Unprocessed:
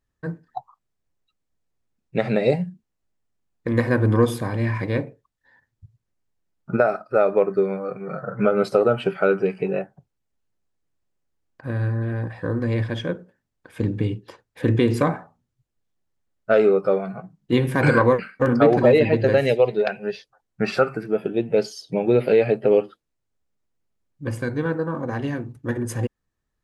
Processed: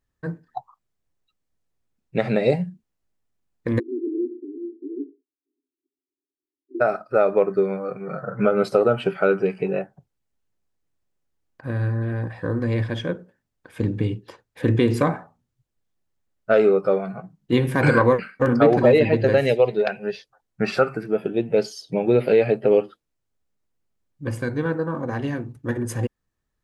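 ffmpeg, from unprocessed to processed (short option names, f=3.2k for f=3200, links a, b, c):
-filter_complex "[0:a]asplit=3[a][b][c];[a]afade=t=out:st=3.78:d=0.02[d];[b]asuperpass=centerf=330:order=20:qfactor=2,afade=t=in:st=3.78:d=0.02,afade=t=out:st=6.8:d=0.02[e];[c]afade=t=in:st=6.8:d=0.02[f];[d][e][f]amix=inputs=3:normalize=0"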